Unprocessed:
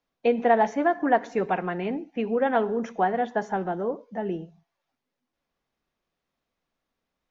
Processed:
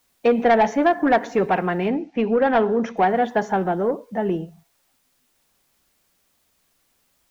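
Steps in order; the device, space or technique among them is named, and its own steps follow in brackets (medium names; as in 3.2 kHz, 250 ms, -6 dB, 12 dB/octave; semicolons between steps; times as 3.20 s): open-reel tape (saturation -17 dBFS, distortion -15 dB; peaking EQ 74 Hz +4.5 dB 1.17 oct; white noise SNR 45 dB); 1.89–2.97 s: low-pass 6 kHz 24 dB/octave; trim +7 dB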